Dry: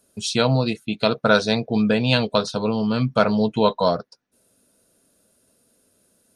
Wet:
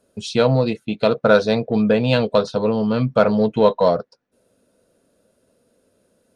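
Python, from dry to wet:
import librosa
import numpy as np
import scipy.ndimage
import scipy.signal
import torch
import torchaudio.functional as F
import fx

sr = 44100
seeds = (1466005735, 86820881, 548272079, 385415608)

p1 = fx.lowpass(x, sr, hz=2500.0, slope=6)
p2 = fx.peak_eq(p1, sr, hz=510.0, db=6.0, octaves=0.51)
p3 = 10.0 ** (-20.0 / 20.0) * np.tanh(p2 / 10.0 ** (-20.0 / 20.0))
y = p2 + F.gain(torch.from_numpy(p3), -11.5).numpy()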